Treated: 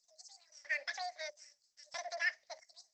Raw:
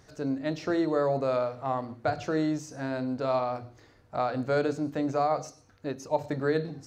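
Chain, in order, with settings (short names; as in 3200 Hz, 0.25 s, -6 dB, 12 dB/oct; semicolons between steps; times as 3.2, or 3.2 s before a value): LFO high-pass square 0.33 Hz 880–4000 Hz; speed mistake 33 rpm record played at 78 rpm; EQ curve 170 Hz 0 dB, 260 Hz -8 dB, 380 Hz -20 dB, 560 Hz +10 dB, 850 Hz -4 dB, 1300 Hz -29 dB, 2000 Hz -5 dB, 3000 Hz -28 dB, 5000 Hz +3 dB, 11000 Hz -21 dB; gain +3 dB; Opus 12 kbps 48000 Hz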